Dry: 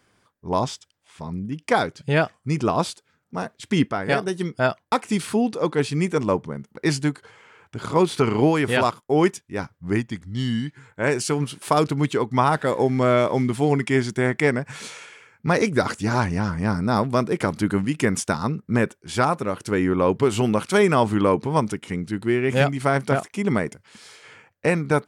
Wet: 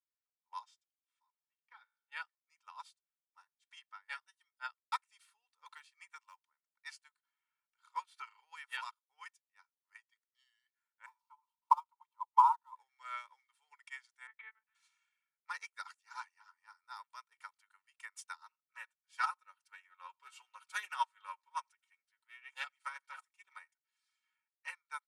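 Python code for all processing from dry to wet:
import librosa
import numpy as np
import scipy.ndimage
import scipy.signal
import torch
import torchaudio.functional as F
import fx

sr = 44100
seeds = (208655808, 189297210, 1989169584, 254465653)

y = fx.chain(x, sr, fx.law_mismatch(coded='A'),
    fx.lowpass(hz=3100.0, slope=12),
    fx.comb_fb(f0_hz=57.0, decay_s=0.68, harmonics='all', damping=0.0, mix_pct=60), at=(1.3, 2.12))
y = fx.chain(y, sr, fx.highpass(hz=610.0, slope=12),
    fx.quant_companded(bits=8),
    fx.band_squash(depth_pct=100), at=(5.66, 6.46))
y = fx.chain(y, sr, fx.dead_time(dead_ms=0.069),
    fx.curve_eq(hz=(150.0, 650.0, 920.0, 1600.0, 2600.0), db=(0, -20, 11, -22, -17)), at=(11.06, 12.76))
y = fx.chain(y, sr, fx.lpc_monotone(seeds[0], pitch_hz=220.0, order=10),
    fx.lowpass(hz=2900.0, slope=6), at=(14.27, 14.75))
y = fx.chain(y, sr, fx.comb(ms=5.4, depth=0.56),
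    fx.echo_single(ms=86, db=-24.0),
    fx.doppler_dist(depth_ms=0.14), at=(18.38, 24.73))
y = scipy.signal.sosfilt(scipy.signal.ellip(4, 1.0, 80, 1000.0, 'highpass', fs=sr, output='sos'), y)
y = y + 0.74 * np.pad(y, (int(2.2 * sr / 1000.0), 0))[:len(y)]
y = fx.upward_expand(y, sr, threshold_db=-37.0, expansion=2.5)
y = F.gain(torch.from_numpy(y), -5.5).numpy()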